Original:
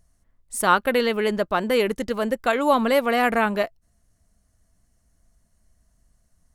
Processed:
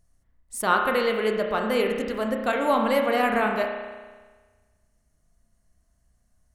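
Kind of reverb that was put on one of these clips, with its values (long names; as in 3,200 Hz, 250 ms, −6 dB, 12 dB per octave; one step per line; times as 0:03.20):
spring reverb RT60 1.4 s, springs 32 ms, chirp 75 ms, DRR 2 dB
level −4.5 dB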